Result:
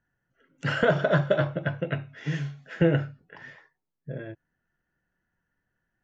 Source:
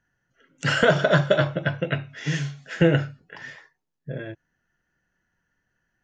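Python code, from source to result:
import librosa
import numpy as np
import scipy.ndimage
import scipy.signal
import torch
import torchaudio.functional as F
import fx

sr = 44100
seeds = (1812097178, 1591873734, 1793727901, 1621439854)

y = fx.lowpass(x, sr, hz=1800.0, slope=6)
y = y * 10.0 ** (-3.0 / 20.0)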